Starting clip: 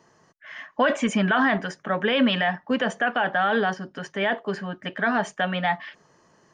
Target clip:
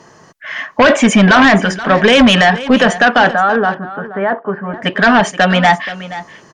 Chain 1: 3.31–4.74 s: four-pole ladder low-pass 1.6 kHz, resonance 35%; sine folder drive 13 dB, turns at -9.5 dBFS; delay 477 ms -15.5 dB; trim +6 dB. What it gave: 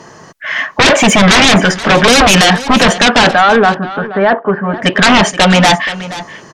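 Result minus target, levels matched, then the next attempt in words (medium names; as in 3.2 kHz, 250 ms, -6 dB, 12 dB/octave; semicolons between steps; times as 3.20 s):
sine folder: distortion +16 dB
3.31–4.74 s: four-pole ladder low-pass 1.6 kHz, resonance 35%; sine folder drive 6 dB, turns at -9.5 dBFS; delay 477 ms -15.5 dB; trim +6 dB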